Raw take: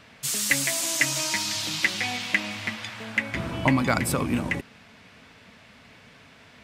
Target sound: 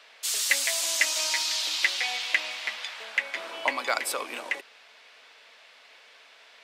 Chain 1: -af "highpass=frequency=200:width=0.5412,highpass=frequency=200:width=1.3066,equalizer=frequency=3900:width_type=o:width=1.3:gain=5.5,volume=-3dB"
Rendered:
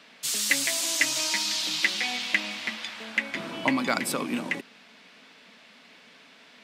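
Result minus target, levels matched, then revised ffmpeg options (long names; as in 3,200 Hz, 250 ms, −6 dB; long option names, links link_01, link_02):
250 Hz band +17.5 dB
-af "highpass=frequency=460:width=0.5412,highpass=frequency=460:width=1.3066,equalizer=frequency=3900:width_type=o:width=1.3:gain=5.5,volume=-3dB"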